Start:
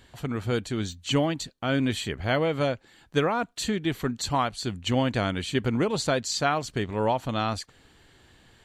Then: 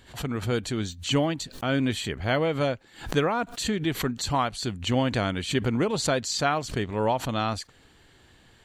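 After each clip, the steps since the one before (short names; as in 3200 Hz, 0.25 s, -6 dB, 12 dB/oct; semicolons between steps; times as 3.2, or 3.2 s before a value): backwards sustainer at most 140 dB/s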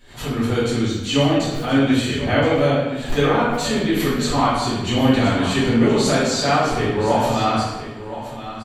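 echo 1.023 s -12.5 dB; reverb RT60 1.1 s, pre-delay 4 ms, DRR -12 dB; gain -5 dB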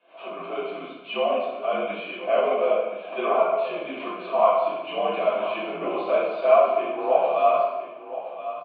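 vowel filter a; mistuned SSB -60 Hz 330–3400 Hz; gain +6.5 dB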